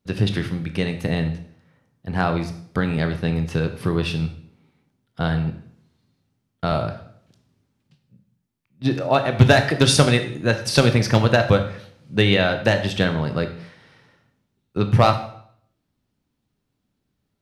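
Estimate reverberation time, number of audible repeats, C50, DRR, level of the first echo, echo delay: 0.65 s, no echo, 10.5 dB, 7.0 dB, no echo, no echo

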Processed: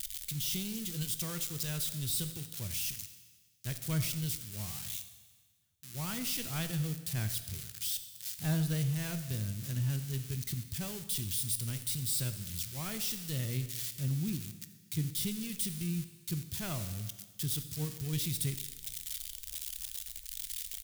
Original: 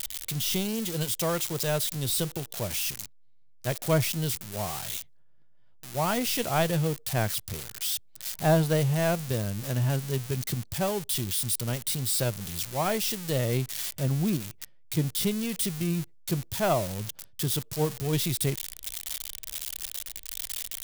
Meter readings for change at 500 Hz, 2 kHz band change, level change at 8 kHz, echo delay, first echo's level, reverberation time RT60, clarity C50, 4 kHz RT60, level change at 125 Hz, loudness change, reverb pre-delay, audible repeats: -19.0 dB, -10.0 dB, -5.0 dB, 87 ms, -18.0 dB, 1.4 s, 11.0 dB, 1.4 s, -5.5 dB, -6.5 dB, 15 ms, 1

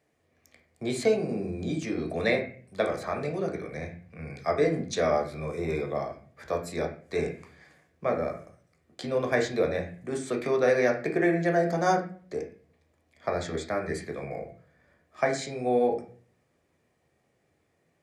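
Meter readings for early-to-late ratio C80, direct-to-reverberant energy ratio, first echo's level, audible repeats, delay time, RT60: 13.5 dB, 1.5 dB, no echo, no echo, no echo, 0.45 s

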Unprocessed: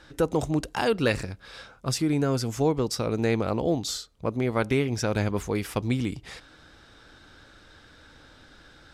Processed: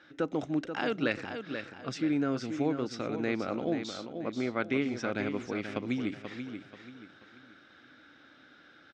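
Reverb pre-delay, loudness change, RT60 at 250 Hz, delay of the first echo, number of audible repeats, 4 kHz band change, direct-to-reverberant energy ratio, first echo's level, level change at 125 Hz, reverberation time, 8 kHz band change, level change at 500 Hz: no reverb, -6.5 dB, no reverb, 484 ms, 3, -8.5 dB, no reverb, -8.0 dB, -12.5 dB, no reverb, -15.5 dB, -7.0 dB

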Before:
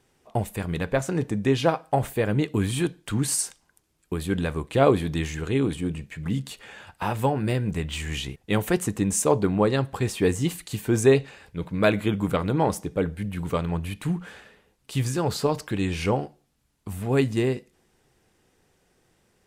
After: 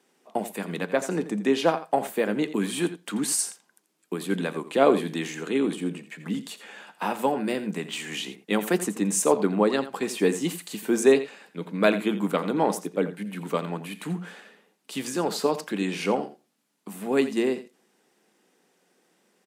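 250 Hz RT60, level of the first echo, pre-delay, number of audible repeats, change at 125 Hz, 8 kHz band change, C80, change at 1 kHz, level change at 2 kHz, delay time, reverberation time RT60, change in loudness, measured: no reverb, -13.5 dB, no reverb, 1, -11.0 dB, 0.0 dB, no reverb, 0.0 dB, 0.0 dB, 85 ms, no reverb, -1.0 dB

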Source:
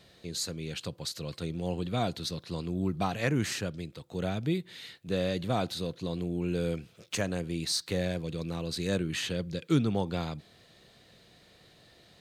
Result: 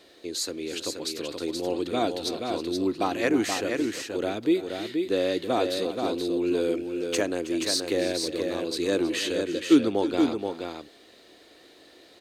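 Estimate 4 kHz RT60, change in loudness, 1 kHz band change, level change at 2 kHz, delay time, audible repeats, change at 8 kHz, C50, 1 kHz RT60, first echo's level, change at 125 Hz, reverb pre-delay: no reverb, +5.5 dB, +5.5 dB, +5.0 dB, 320 ms, 2, +5.0 dB, no reverb, no reverb, -15.0 dB, -10.5 dB, no reverb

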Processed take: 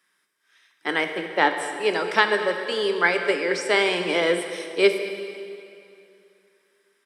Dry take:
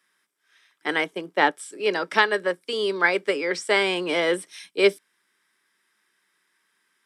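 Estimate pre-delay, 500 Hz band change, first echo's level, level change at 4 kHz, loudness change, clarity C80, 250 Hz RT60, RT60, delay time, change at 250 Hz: 7 ms, +1.5 dB, -17.5 dB, +1.0 dB, +1.0 dB, 7.5 dB, 2.7 s, 2.6 s, 219 ms, +1.0 dB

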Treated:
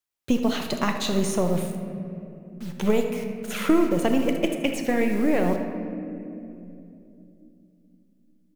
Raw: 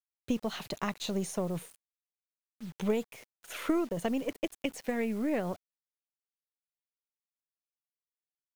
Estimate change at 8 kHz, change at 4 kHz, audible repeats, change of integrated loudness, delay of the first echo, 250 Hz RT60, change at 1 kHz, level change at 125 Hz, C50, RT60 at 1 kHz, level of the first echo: +8.5 dB, +9.0 dB, 1, +8.5 dB, 78 ms, 4.6 s, +10.0 dB, +10.0 dB, 5.5 dB, 2.4 s, -13.0 dB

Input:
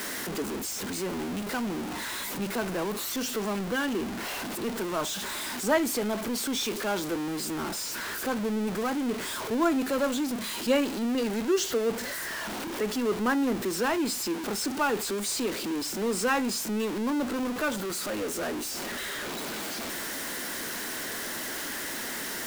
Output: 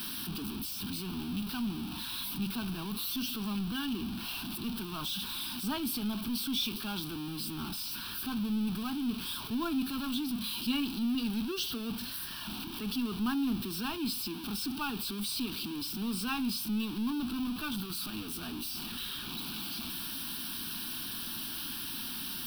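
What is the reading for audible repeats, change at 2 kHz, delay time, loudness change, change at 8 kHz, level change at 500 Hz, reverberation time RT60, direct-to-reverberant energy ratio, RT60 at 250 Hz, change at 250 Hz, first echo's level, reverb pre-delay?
no echo, -10.5 dB, no echo, -5.0 dB, -9.0 dB, -18.0 dB, no reverb, no reverb, no reverb, -3.5 dB, no echo, no reverb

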